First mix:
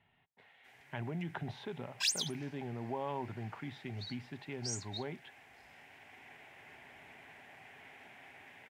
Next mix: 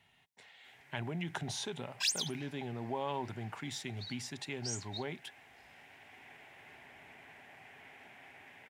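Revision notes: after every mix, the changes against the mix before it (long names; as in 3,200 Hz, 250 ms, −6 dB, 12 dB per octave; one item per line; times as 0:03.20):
speech: remove high-frequency loss of the air 440 metres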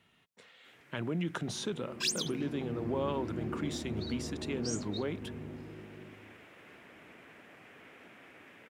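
second sound: unmuted
master: add thirty-one-band graphic EQ 200 Hz +10 dB, 315 Hz +11 dB, 500 Hz +10 dB, 800 Hz −8 dB, 1,250 Hz +9 dB, 2,000 Hz −3 dB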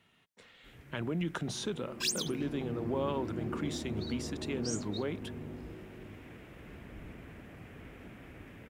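first sound: remove meter weighting curve A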